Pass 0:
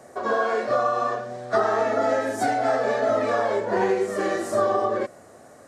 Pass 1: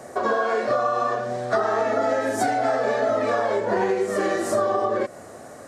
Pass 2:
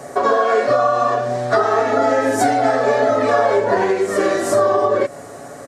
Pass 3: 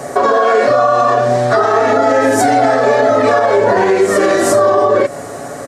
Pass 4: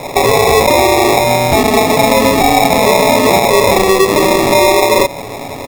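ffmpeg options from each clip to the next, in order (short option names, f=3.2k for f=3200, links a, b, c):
-af "acompressor=threshold=-28dB:ratio=3,volume=7dB"
-af "aecho=1:1:7.1:0.5,volume=5.5dB"
-af "alimiter=level_in=10.5dB:limit=-1dB:release=50:level=0:latency=1,volume=-2dB"
-af "acrusher=samples=29:mix=1:aa=0.000001,volume=1.5dB"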